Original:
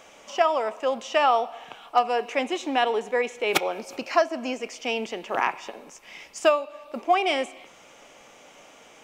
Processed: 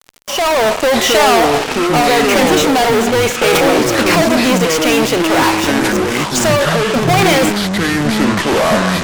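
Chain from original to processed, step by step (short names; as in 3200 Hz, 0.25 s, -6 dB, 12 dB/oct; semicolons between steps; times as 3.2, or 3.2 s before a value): fuzz box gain 43 dB, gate -42 dBFS; echoes that change speed 0.52 s, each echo -7 st, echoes 2; AGC gain up to 9 dB; gain -2 dB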